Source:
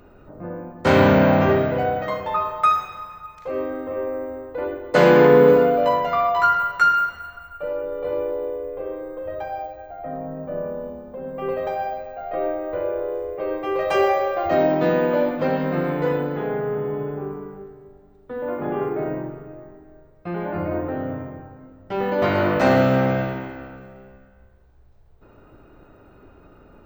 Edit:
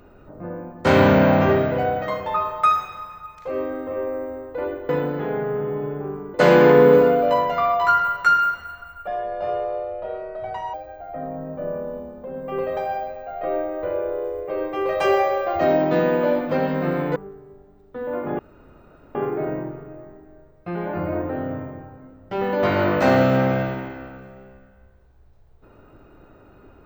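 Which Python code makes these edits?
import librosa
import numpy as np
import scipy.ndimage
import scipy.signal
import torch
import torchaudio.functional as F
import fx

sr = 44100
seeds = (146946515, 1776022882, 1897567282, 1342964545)

y = fx.edit(x, sr, fx.speed_span(start_s=7.62, length_s=2.02, speed=1.21),
    fx.move(start_s=16.06, length_s=1.45, to_s=4.89),
    fx.insert_room_tone(at_s=18.74, length_s=0.76), tone=tone)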